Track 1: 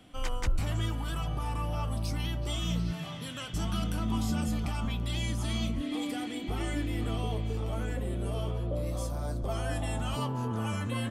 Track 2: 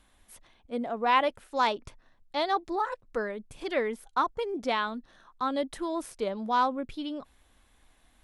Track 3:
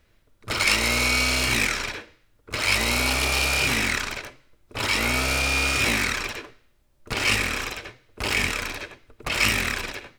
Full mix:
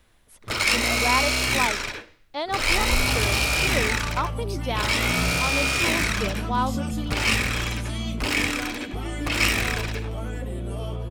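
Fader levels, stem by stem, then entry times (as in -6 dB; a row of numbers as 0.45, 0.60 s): +2.0, -0.5, -0.5 dB; 2.45, 0.00, 0.00 s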